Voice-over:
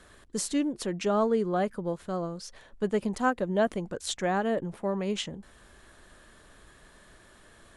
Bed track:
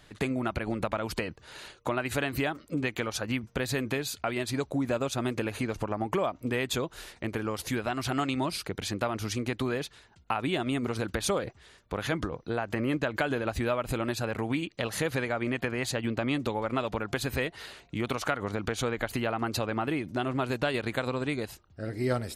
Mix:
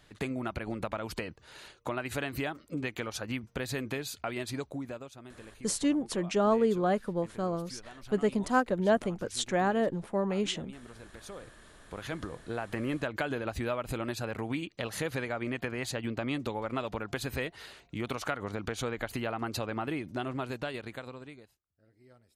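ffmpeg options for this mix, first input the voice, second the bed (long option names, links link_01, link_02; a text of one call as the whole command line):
ffmpeg -i stem1.wav -i stem2.wav -filter_complex "[0:a]adelay=5300,volume=0dB[link_01];[1:a]volume=10.5dB,afade=type=out:start_time=4.48:duration=0.65:silence=0.188365,afade=type=in:start_time=11.24:duration=1.45:silence=0.177828,afade=type=out:start_time=20.14:duration=1.43:silence=0.0446684[link_02];[link_01][link_02]amix=inputs=2:normalize=0" out.wav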